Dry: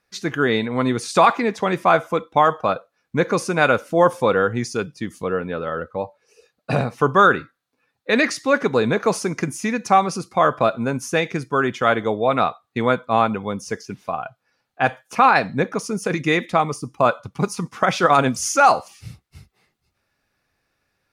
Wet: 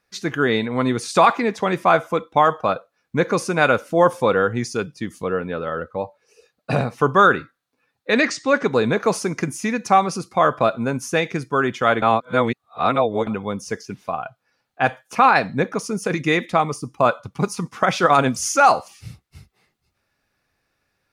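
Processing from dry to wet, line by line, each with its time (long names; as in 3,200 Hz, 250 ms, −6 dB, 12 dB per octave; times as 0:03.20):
0:08.13–0:08.72: Butterworth low-pass 8,800 Hz 96 dB per octave
0:12.02–0:13.27: reverse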